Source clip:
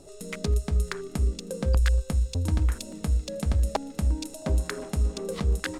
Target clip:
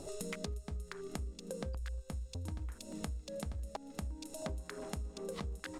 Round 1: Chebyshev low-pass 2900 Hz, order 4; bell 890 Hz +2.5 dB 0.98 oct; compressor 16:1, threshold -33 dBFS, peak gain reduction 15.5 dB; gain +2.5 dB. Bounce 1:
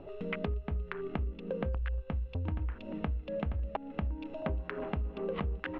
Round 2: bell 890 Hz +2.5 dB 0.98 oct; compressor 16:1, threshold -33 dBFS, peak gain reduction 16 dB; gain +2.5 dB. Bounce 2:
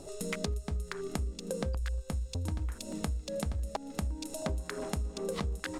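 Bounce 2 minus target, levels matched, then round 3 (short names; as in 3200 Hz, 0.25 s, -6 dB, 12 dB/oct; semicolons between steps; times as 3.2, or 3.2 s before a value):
compressor: peak gain reduction -7 dB
bell 890 Hz +2.5 dB 0.98 oct; compressor 16:1, threshold -40.5 dBFS, peak gain reduction 23.5 dB; gain +2.5 dB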